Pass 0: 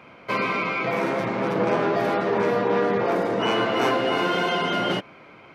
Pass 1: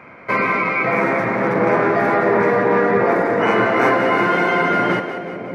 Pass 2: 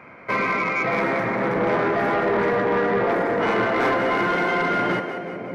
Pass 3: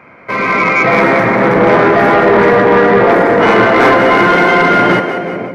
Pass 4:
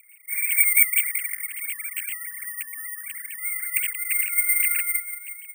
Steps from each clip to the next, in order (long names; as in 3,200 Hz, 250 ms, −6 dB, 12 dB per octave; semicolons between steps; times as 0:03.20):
high shelf with overshoot 2,500 Hz −6 dB, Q 3; echo with a time of its own for lows and highs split 620 Hz, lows 623 ms, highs 183 ms, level −9 dB; level +5 dB
soft clipping −11 dBFS, distortion −17 dB; level −3 dB
automatic gain control gain up to 9 dB; level +4 dB
three sine waves on the formant tracks; elliptic high-pass filter 2,300 Hz, stop band 70 dB; bad sample-rate conversion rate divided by 4×, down filtered, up zero stuff; level −9 dB